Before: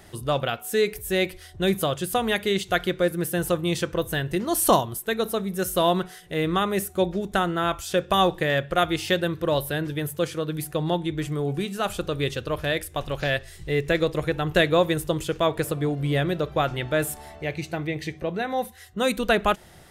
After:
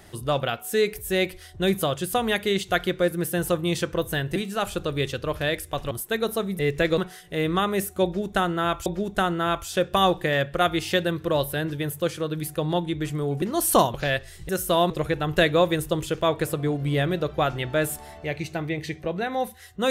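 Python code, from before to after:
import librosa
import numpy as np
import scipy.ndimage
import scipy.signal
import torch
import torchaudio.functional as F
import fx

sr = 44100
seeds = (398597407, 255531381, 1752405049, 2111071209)

y = fx.edit(x, sr, fx.swap(start_s=4.36, length_s=0.52, other_s=11.59, other_length_s=1.55),
    fx.swap(start_s=5.56, length_s=0.41, other_s=13.69, other_length_s=0.39),
    fx.repeat(start_s=7.03, length_s=0.82, count=2), tone=tone)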